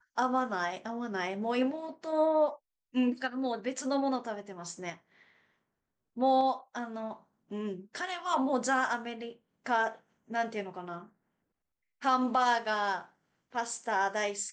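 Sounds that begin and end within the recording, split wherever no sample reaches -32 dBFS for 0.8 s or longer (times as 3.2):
6.18–10.94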